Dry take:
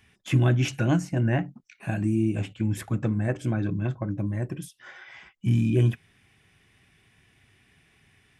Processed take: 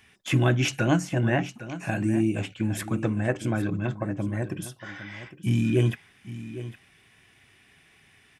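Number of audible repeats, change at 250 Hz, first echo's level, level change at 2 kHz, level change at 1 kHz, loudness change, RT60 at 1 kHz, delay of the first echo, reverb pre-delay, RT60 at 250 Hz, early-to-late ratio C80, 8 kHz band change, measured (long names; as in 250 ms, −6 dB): 1, +0.5 dB, −14.0 dB, +4.5 dB, +4.0 dB, −0.5 dB, no reverb audible, 808 ms, no reverb audible, no reverb audible, no reverb audible, +4.5 dB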